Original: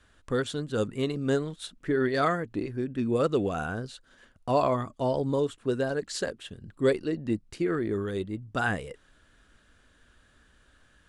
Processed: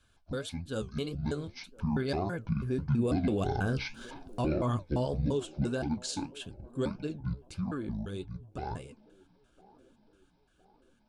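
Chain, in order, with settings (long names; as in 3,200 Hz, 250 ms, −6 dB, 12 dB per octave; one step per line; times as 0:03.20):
pitch shifter gated in a rhythm −10.5 semitones, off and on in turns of 168 ms
source passing by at 0:04.04, 9 m/s, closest 4.6 metres
flanger 1.7 Hz, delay 6.9 ms, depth 9.1 ms, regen +64%
Butterworth band-reject 1,900 Hz, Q 5.2
high-shelf EQ 2,900 Hz +10 dB
in parallel at +1.5 dB: downward compressor, threshold −45 dBFS, peak gain reduction 16.5 dB
on the sum: brickwall limiter −29.5 dBFS, peak gain reduction 9.5 dB
bass and treble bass +5 dB, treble −3 dB
on a send: delay with a band-pass on its return 1,012 ms, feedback 51%, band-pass 480 Hz, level −21 dB
on the sum: level +6 dB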